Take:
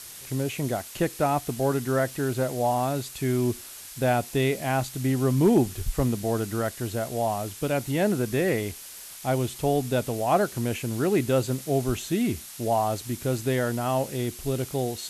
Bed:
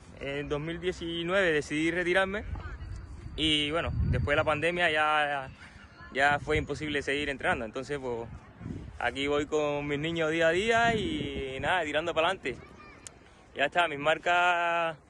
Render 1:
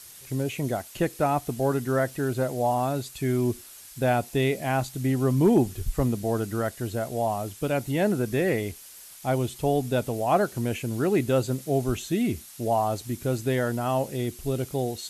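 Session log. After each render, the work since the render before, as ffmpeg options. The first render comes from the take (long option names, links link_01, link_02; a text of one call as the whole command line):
ffmpeg -i in.wav -af "afftdn=noise_reduction=6:noise_floor=-43" out.wav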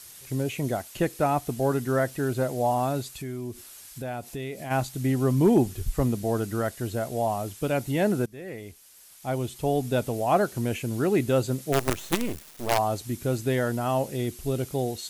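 ffmpeg -i in.wav -filter_complex "[0:a]asplit=3[link_01][link_02][link_03];[link_01]afade=type=out:start_time=3.15:duration=0.02[link_04];[link_02]acompressor=threshold=-35dB:ratio=2.5:attack=3.2:release=140:knee=1:detection=peak,afade=type=in:start_time=3.15:duration=0.02,afade=type=out:start_time=4.7:duration=0.02[link_05];[link_03]afade=type=in:start_time=4.7:duration=0.02[link_06];[link_04][link_05][link_06]amix=inputs=3:normalize=0,asplit=3[link_07][link_08][link_09];[link_07]afade=type=out:start_time=11.72:duration=0.02[link_10];[link_08]acrusher=bits=4:dc=4:mix=0:aa=0.000001,afade=type=in:start_time=11.72:duration=0.02,afade=type=out:start_time=12.77:duration=0.02[link_11];[link_09]afade=type=in:start_time=12.77:duration=0.02[link_12];[link_10][link_11][link_12]amix=inputs=3:normalize=0,asplit=2[link_13][link_14];[link_13]atrim=end=8.26,asetpts=PTS-STARTPTS,afade=type=out:start_time=8.256:duration=0.004:curve=hsin:silence=0.0891251[link_15];[link_14]atrim=start=8.26,asetpts=PTS-STARTPTS,afade=type=in:duration=1.69:silence=0.0891251[link_16];[link_15][link_16]concat=n=2:v=0:a=1" out.wav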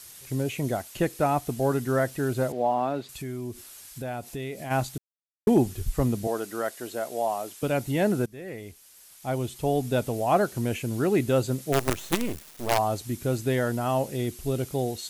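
ffmpeg -i in.wav -filter_complex "[0:a]asettb=1/sr,asplit=3[link_01][link_02][link_03];[link_01]atrim=end=2.524[link_04];[link_02]atrim=start=2.52:end=3.09,asetpts=PTS-STARTPTS,afade=type=in:duration=0.004:curve=qsin,afade=type=out:start_time=0.566:duration=0.004:curve=qsin,acrossover=split=170 3900:gain=0.0708 1 0.112[link_05][link_06][link_07];[link_05][link_06][link_07]amix=inputs=3:normalize=0[link_08];[link_03]atrim=start=3.086[link_09];[link_04][link_08]acrossfade=duration=0.004:curve1=hsin:curve2=qsin[link_10];[link_10][link_09]acrossfade=duration=0.004:curve1=qsin:curve2=hsin,asettb=1/sr,asplit=3[link_11][link_12][link_13];[link_11]atrim=end=6.274[link_14];[link_12]atrim=start=6.27:end=7.63,asetpts=PTS-STARTPTS,afade=type=in:duration=0.004:curve=qsin,afade=type=out:start_time=1.356:duration=0.004:curve=qsin,highpass=350[link_15];[link_13]atrim=start=7.626[link_16];[link_14][link_15]acrossfade=duration=0.004:curve1=hsin:curve2=qsin[link_17];[link_17][link_16]acrossfade=duration=0.004:curve1=qsin:curve2=hsin,asplit=3[link_18][link_19][link_20];[link_18]atrim=end=4.98,asetpts=PTS-STARTPTS,afade=type=out:start_time=4.976:duration=0.004:curve=hsin[link_21];[link_19]atrim=start=4.98:end=5.47,asetpts=PTS-STARTPTS,volume=0[link_22];[link_20]atrim=start=5.47,asetpts=PTS-STARTPTS,afade=type=in:duration=0.004:curve=hsin[link_23];[link_21][link_22][link_23]concat=n=3:v=0:a=1" out.wav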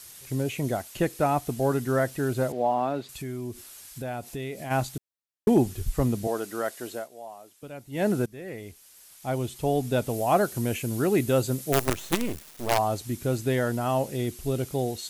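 ffmpeg -i in.wav -filter_complex "[0:a]asettb=1/sr,asplit=3[link_01][link_02][link_03];[link_01]atrim=end=10.094[link_04];[link_02]atrim=start=10.09:end=11.86,asetpts=PTS-STARTPTS,afade=type=in:duration=0.004:curve=qsin,afade=type=out:start_time=1.766:duration=0.004:curve=qsin,highshelf=frequency=8800:gain=8[link_05];[link_03]atrim=start=11.856[link_06];[link_04][link_05]acrossfade=duration=0.004:curve1=hsin:curve2=qsin[link_07];[link_07][link_06]acrossfade=duration=0.004:curve1=qsin:curve2=hsin,asplit=3[link_08][link_09][link_10];[link_08]atrim=end=7.08,asetpts=PTS-STARTPTS,afade=type=out:start_time=6.87:duration=0.21:curve=qsin:silence=0.188365[link_11];[link_09]atrim=start=7.08:end=7.91,asetpts=PTS-STARTPTS,volume=-14.5dB[link_12];[link_10]atrim=start=7.91,asetpts=PTS-STARTPTS,afade=type=in:duration=0.21:curve=qsin:silence=0.188365[link_13];[link_11][link_12][link_13]concat=n=3:v=0:a=1" out.wav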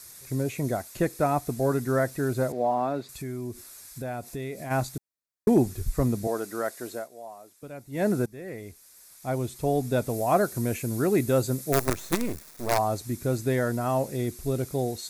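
ffmpeg -i in.wav -af "equalizer=frequency=3000:width_type=o:width=0.3:gain=-12.5,bandreject=frequency=830:width=16" out.wav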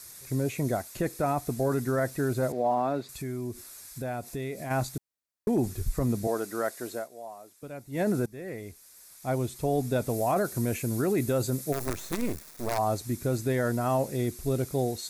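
ffmpeg -i in.wav -af "alimiter=limit=-18dB:level=0:latency=1:release=18" out.wav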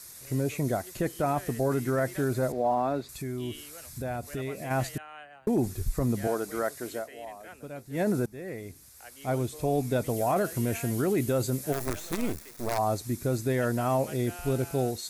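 ffmpeg -i in.wav -i bed.wav -filter_complex "[1:a]volume=-20dB[link_01];[0:a][link_01]amix=inputs=2:normalize=0" out.wav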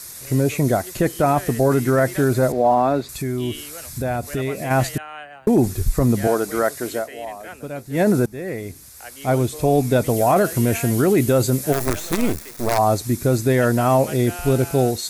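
ffmpeg -i in.wav -af "volume=10dB" out.wav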